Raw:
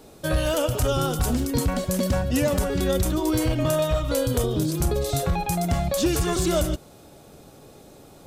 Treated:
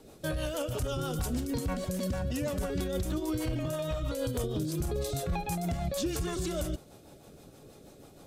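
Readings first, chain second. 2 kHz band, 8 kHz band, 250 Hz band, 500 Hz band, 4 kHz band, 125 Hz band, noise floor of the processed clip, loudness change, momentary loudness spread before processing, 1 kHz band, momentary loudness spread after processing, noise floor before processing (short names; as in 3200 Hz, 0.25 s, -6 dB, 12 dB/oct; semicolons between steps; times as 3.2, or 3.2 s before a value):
-9.5 dB, -10.0 dB, -8.5 dB, -9.5 dB, -9.5 dB, -8.5 dB, -54 dBFS, -9.5 dB, 2 LU, -10.0 dB, 5 LU, -49 dBFS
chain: limiter -20 dBFS, peak gain reduction 6.5 dB; rotary speaker horn 6.3 Hz; gain -3 dB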